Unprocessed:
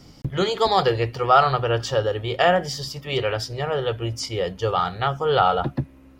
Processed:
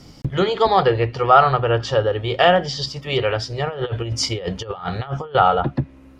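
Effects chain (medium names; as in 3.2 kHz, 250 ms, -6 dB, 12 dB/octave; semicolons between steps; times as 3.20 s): 2.42–2.86 s: high-order bell 4.9 kHz +9 dB; low-pass that closes with the level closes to 2.8 kHz, closed at -17.5 dBFS; 3.67–5.35 s: compressor with a negative ratio -28 dBFS, ratio -0.5; trim +3.5 dB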